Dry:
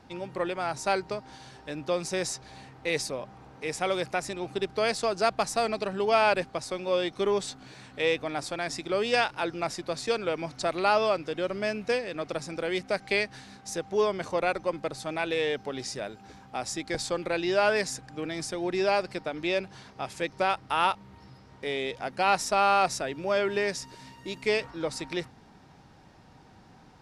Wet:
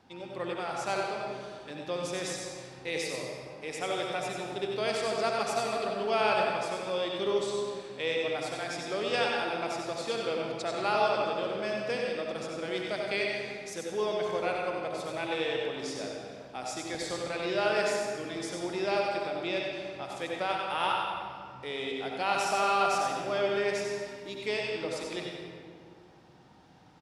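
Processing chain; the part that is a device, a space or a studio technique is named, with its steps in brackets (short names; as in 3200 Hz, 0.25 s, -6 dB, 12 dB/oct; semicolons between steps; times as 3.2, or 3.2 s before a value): PA in a hall (HPF 110 Hz 6 dB/oct; bell 3300 Hz +4 dB 0.34 oct; echo 93 ms -7 dB; reverb RT60 2.1 s, pre-delay 61 ms, DRR 0.5 dB); gain -6.5 dB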